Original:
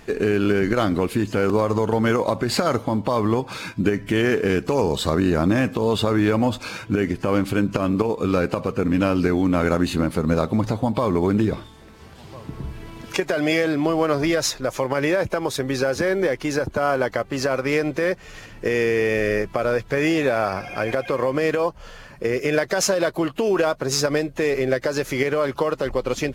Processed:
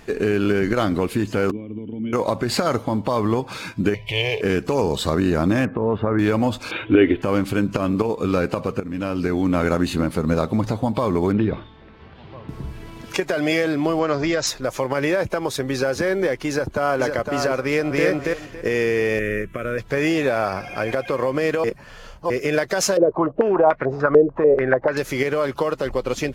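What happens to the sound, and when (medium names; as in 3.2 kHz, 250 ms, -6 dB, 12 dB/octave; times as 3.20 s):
1.51–2.13 s: cascade formant filter i
3.94–4.41 s: FFT filter 130 Hz 0 dB, 260 Hz -29 dB, 490 Hz +1 dB, 990 Hz +3 dB, 1.4 kHz -29 dB, 2.2 kHz +6 dB, 3.4 kHz +9 dB, 7.2 kHz -8 dB, 13 kHz -4 dB
5.65–6.19 s: Chebyshev low-pass 1.8 kHz, order 3
6.71–7.22 s: FFT filter 120 Hz 0 dB, 190 Hz -7 dB, 310 Hz +11 dB, 490 Hz +6 dB, 1.1 kHz +2 dB, 2 kHz +6 dB, 3.5 kHz +10 dB, 5 kHz -23 dB, 9.3 kHz -27 dB, 15 kHz -10 dB
8.80–9.49 s: fade in, from -12.5 dB
11.32–12.49 s: low-pass 3.6 kHz 24 dB/octave
13.99–14.47 s: Chebyshev low-pass 7.8 kHz, order 8
16.48–17.00 s: echo throw 510 ms, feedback 20%, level -5 dB
17.62–18.05 s: echo throw 280 ms, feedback 20%, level -0.5 dB
19.19–19.78 s: static phaser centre 2 kHz, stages 4
21.64–22.30 s: reverse
22.97–24.97 s: step-sequenced low-pass 6.8 Hz 450–2000 Hz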